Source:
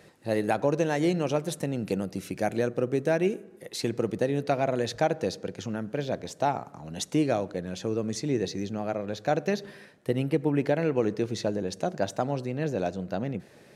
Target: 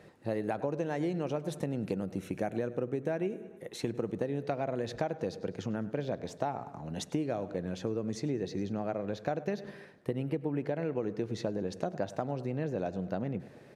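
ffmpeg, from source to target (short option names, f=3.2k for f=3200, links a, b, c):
-filter_complex "[0:a]highshelf=f=2.8k:g=-10,aecho=1:1:102|204|306|408:0.0944|0.0463|0.0227|0.0111,acompressor=threshold=-29dB:ratio=6,asettb=1/sr,asplit=3[a][b][c];[a]atrim=end=2.084[d];[b]atrim=start=2.08:end=4.22,asetpts=PTS-STARTPTS,afade=t=in:d=0.004:c=qsin,afade=t=out:st=2.136:d=0.004:c=qsin,equalizer=f=4.8k:w=7.5:g=-11[e];[c]atrim=start=4.216[f];[d][e]acrossfade=d=0.004:c1=hsin:c2=qsin[g];[g][f]acrossfade=d=0.004:c1=qsin:c2=hsin"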